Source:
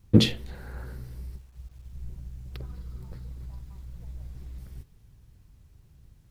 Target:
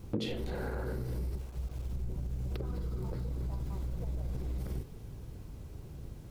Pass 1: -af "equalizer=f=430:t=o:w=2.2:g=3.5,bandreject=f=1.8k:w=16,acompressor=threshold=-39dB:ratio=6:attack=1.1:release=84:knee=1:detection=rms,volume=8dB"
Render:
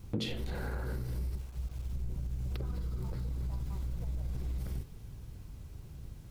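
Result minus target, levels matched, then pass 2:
500 Hz band -4.5 dB
-af "equalizer=f=430:t=o:w=2.2:g=11,bandreject=f=1.8k:w=16,acompressor=threshold=-39dB:ratio=6:attack=1.1:release=84:knee=1:detection=rms,volume=8dB"

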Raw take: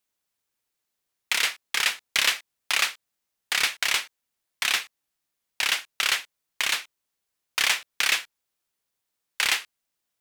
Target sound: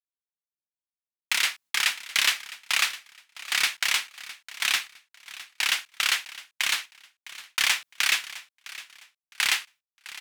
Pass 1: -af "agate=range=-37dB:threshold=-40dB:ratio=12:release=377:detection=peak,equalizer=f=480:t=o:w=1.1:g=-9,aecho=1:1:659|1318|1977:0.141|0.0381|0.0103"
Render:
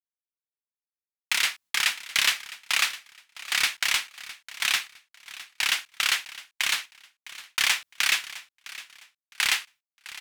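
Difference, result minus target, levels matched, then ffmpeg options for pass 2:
125 Hz band +3.0 dB
-af "agate=range=-37dB:threshold=-40dB:ratio=12:release=377:detection=peak,highpass=f=120:p=1,equalizer=f=480:t=o:w=1.1:g=-9,aecho=1:1:659|1318|1977:0.141|0.0381|0.0103"

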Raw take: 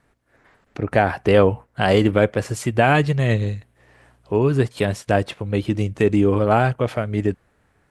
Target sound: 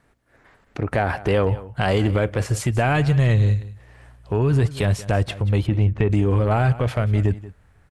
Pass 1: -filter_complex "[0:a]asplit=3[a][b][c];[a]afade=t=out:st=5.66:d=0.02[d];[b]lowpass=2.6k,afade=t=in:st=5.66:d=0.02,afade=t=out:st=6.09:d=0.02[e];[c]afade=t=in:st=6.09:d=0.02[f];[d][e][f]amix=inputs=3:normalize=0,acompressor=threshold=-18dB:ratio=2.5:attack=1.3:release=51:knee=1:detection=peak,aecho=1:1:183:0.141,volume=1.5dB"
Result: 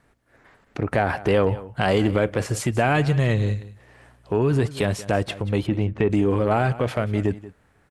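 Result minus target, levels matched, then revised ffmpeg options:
125 Hz band -3.5 dB
-filter_complex "[0:a]asplit=3[a][b][c];[a]afade=t=out:st=5.66:d=0.02[d];[b]lowpass=2.6k,afade=t=in:st=5.66:d=0.02,afade=t=out:st=6.09:d=0.02[e];[c]afade=t=in:st=6.09:d=0.02[f];[d][e][f]amix=inputs=3:normalize=0,acompressor=threshold=-18dB:ratio=2.5:attack=1.3:release=51:knee=1:detection=peak,asubboost=boost=3.5:cutoff=130,aecho=1:1:183:0.141,volume=1.5dB"

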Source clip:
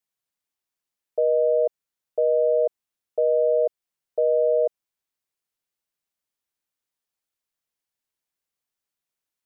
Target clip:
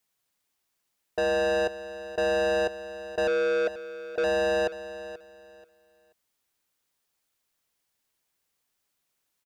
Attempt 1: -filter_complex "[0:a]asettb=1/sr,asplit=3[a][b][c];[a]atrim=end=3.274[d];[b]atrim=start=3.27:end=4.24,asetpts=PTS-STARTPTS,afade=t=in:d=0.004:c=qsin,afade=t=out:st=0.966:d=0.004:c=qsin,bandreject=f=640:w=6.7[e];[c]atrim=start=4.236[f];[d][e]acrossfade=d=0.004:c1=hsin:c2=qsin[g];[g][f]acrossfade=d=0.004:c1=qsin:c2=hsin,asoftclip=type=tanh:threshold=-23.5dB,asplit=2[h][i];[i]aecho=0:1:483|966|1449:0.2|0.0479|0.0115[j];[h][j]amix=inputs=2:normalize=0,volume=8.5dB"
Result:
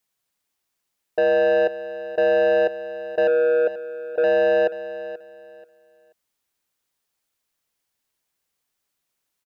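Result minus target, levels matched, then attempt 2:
soft clip: distortion -4 dB
-filter_complex "[0:a]asettb=1/sr,asplit=3[a][b][c];[a]atrim=end=3.274[d];[b]atrim=start=3.27:end=4.24,asetpts=PTS-STARTPTS,afade=t=in:d=0.004:c=qsin,afade=t=out:st=0.966:d=0.004:c=qsin,bandreject=f=640:w=6.7[e];[c]atrim=start=4.236[f];[d][e]acrossfade=d=0.004:c1=hsin:c2=qsin[g];[g][f]acrossfade=d=0.004:c1=qsin:c2=hsin,asoftclip=type=tanh:threshold=-32dB,asplit=2[h][i];[i]aecho=0:1:483|966|1449:0.2|0.0479|0.0115[j];[h][j]amix=inputs=2:normalize=0,volume=8.5dB"

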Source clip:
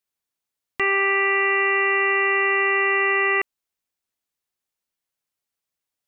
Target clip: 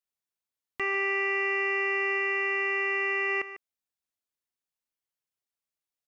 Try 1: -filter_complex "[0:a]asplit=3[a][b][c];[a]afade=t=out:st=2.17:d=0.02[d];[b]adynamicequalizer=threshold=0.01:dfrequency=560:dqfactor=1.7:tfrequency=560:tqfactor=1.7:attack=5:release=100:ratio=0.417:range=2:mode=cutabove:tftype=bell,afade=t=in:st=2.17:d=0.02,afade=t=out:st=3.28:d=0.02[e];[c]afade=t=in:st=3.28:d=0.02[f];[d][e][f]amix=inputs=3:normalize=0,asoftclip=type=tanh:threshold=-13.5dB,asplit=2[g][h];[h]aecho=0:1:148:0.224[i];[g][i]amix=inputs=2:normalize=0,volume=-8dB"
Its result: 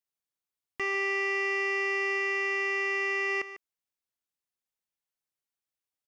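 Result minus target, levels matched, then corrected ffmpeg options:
soft clip: distortion +13 dB
-filter_complex "[0:a]asplit=3[a][b][c];[a]afade=t=out:st=2.17:d=0.02[d];[b]adynamicequalizer=threshold=0.01:dfrequency=560:dqfactor=1.7:tfrequency=560:tqfactor=1.7:attack=5:release=100:ratio=0.417:range=2:mode=cutabove:tftype=bell,afade=t=in:st=2.17:d=0.02,afade=t=out:st=3.28:d=0.02[e];[c]afade=t=in:st=3.28:d=0.02[f];[d][e][f]amix=inputs=3:normalize=0,asoftclip=type=tanh:threshold=-6dB,asplit=2[g][h];[h]aecho=0:1:148:0.224[i];[g][i]amix=inputs=2:normalize=0,volume=-8dB"

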